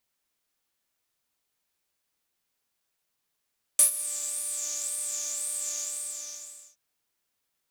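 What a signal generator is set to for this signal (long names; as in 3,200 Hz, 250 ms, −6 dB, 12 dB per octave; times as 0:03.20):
subtractive patch with filter wobble D5, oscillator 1 triangle, oscillator 2 saw, interval +12 semitones, sub −9.5 dB, noise −6 dB, filter bandpass, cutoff 6,700 Hz, Q 8.5, filter envelope 0.5 octaves, filter decay 0.82 s, filter sustain 35%, attack 2.3 ms, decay 0.11 s, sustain −17 dB, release 1.02 s, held 1.95 s, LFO 1.9 Hz, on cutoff 0.2 octaves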